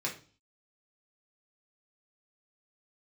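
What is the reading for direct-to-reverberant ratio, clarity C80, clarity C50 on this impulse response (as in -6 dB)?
-2.5 dB, 16.0 dB, 10.0 dB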